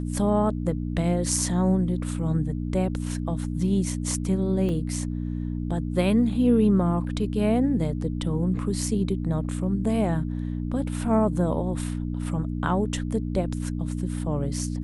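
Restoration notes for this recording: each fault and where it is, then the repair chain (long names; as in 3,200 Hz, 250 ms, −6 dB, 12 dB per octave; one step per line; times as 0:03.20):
mains hum 60 Hz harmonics 5 −29 dBFS
0:04.69: drop-out 2.7 ms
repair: hum removal 60 Hz, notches 5
repair the gap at 0:04.69, 2.7 ms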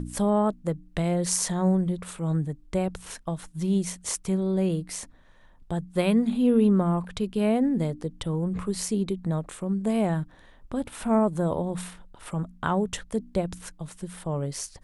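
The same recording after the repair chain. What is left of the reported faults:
none of them is left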